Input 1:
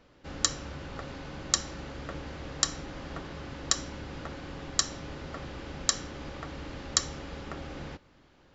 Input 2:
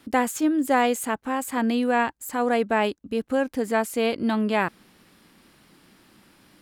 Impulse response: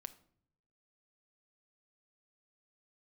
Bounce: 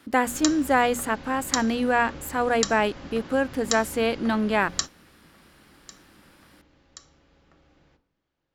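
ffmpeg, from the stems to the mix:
-filter_complex "[0:a]bandreject=frequency=46.27:width_type=h:width=4,bandreject=frequency=92.54:width_type=h:width=4,bandreject=frequency=138.81:width_type=h:width=4,bandreject=frequency=185.08:width_type=h:width=4,bandreject=frequency=231.35:width_type=h:width=4,bandreject=frequency=277.62:width_type=h:width=4,bandreject=frequency=323.89:width_type=h:width=4,bandreject=frequency=370.16:width_type=h:width=4,bandreject=frequency=416.43:width_type=h:width=4,bandreject=frequency=462.7:width_type=h:width=4,bandreject=frequency=508.97:width_type=h:width=4,bandreject=frequency=555.24:width_type=h:width=4,bandreject=frequency=601.51:width_type=h:width=4,bandreject=frequency=647.78:width_type=h:width=4,bandreject=frequency=694.05:width_type=h:width=4,bandreject=frequency=740.32:width_type=h:width=4,bandreject=frequency=786.59:width_type=h:width=4,bandreject=frequency=832.86:width_type=h:width=4,bandreject=frequency=879.13:width_type=h:width=4,bandreject=frequency=925.4:width_type=h:width=4,bandreject=frequency=971.67:width_type=h:width=4,bandreject=frequency=1017.94:width_type=h:width=4,bandreject=frequency=1064.21:width_type=h:width=4,bandreject=frequency=1110.48:width_type=h:width=4,bandreject=frequency=1156.75:width_type=h:width=4,bandreject=frequency=1203.02:width_type=h:width=4,bandreject=frequency=1249.29:width_type=h:width=4,bandreject=frequency=1295.56:width_type=h:width=4,bandreject=frequency=1341.83:width_type=h:width=4,bandreject=frequency=1388.1:width_type=h:width=4,bandreject=frequency=1434.37:width_type=h:width=4,bandreject=frequency=1480.64:width_type=h:width=4,bandreject=frequency=1526.91:width_type=h:width=4,volume=-1dB,asplit=2[link_01][link_02];[link_02]volume=-15.5dB[link_03];[1:a]equalizer=frequency=1500:width_type=o:width=0.74:gain=4,volume=-0.5dB,asplit=2[link_04][link_05];[link_05]apad=whole_len=376890[link_06];[link_01][link_06]sidechaingate=range=-33dB:threshold=-45dB:ratio=16:detection=peak[link_07];[2:a]atrim=start_sample=2205[link_08];[link_03][link_08]afir=irnorm=-1:irlink=0[link_09];[link_07][link_04][link_09]amix=inputs=3:normalize=0,bandreject=frequency=60:width_type=h:width=6,bandreject=frequency=120:width_type=h:width=6,bandreject=frequency=180:width_type=h:width=6,bandreject=frequency=240:width_type=h:width=6"

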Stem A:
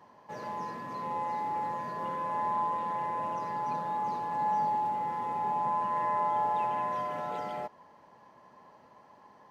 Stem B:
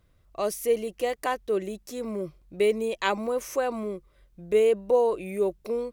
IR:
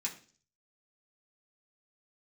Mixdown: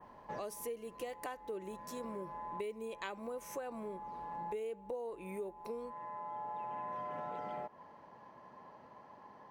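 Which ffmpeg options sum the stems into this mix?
-filter_complex "[0:a]lowpass=frequency=2900:poles=1,acompressor=threshold=-32dB:ratio=6,volume=1dB[link_01];[1:a]volume=-8.5dB,asplit=3[link_02][link_03][link_04];[link_03]volume=-17dB[link_05];[link_04]apad=whole_len=419244[link_06];[link_01][link_06]sidechaincompress=threshold=-46dB:ratio=16:attack=39:release=1310[link_07];[2:a]atrim=start_sample=2205[link_08];[link_05][link_08]afir=irnorm=-1:irlink=0[link_09];[link_07][link_02][link_09]amix=inputs=3:normalize=0,adynamicequalizer=threshold=0.00112:dfrequency=4700:dqfactor=1.1:tfrequency=4700:tqfactor=1.1:attack=5:release=100:ratio=0.375:range=2:mode=cutabove:tftype=bell,acompressor=threshold=-39dB:ratio=6"

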